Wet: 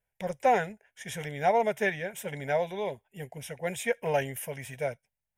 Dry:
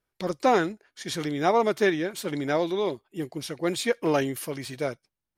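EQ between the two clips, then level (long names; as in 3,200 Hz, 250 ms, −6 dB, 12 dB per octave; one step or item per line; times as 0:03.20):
phaser with its sweep stopped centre 1,200 Hz, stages 6
0.0 dB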